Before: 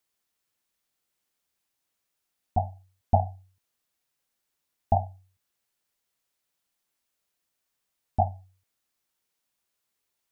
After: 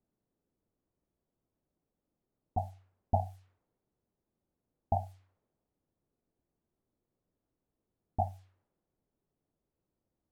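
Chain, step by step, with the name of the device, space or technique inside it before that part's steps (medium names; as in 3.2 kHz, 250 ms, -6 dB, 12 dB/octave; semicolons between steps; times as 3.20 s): cassette deck with a dynamic noise filter (white noise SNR 26 dB; level-controlled noise filter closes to 360 Hz, open at -24.5 dBFS); trim -7.5 dB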